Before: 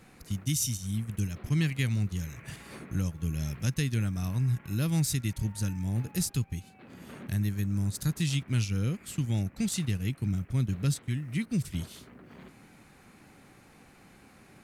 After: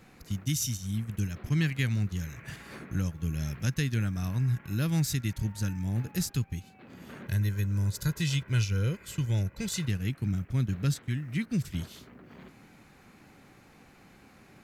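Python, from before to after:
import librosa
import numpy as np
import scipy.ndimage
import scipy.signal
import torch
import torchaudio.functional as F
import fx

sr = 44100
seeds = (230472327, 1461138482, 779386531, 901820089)

y = fx.peak_eq(x, sr, hz=9300.0, db=-9.0, octaves=0.31)
y = fx.comb(y, sr, ms=2.0, depth=0.59, at=(7.24, 9.88))
y = fx.dynamic_eq(y, sr, hz=1600.0, q=3.1, threshold_db=-58.0, ratio=4.0, max_db=5)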